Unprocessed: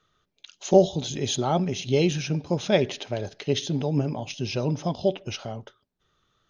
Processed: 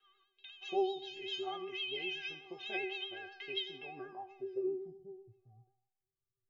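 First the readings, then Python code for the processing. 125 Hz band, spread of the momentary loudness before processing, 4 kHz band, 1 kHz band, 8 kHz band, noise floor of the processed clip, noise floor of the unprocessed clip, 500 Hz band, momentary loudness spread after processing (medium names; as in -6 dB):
-36.0 dB, 13 LU, -7.5 dB, -12.0 dB, under -30 dB, under -85 dBFS, -75 dBFS, -15.5 dB, 13 LU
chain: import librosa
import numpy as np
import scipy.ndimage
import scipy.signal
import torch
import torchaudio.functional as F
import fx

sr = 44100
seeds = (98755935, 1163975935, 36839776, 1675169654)

p1 = fx.filter_sweep_lowpass(x, sr, from_hz=2900.0, to_hz=120.0, start_s=3.79, end_s=5.14, q=5.1)
p2 = fx.low_shelf(p1, sr, hz=220.0, db=-11.0)
p3 = fx.stiff_resonator(p2, sr, f0_hz=380.0, decay_s=0.65, stiffness=0.008)
p4 = fx.vibrato(p3, sr, rate_hz=7.9, depth_cents=51.0)
p5 = fx.air_absorb(p4, sr, metres=53.0)
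p6 = p5 + fx.echo_feedback(p5, sr, ms=85, feedback_pct=42, wet_db=-21.0, dry=0)
p7 = fx.band_squash(p6, sr, depth_pct=40)
y = p7 * 10.0 ** (4.5 / 20.0)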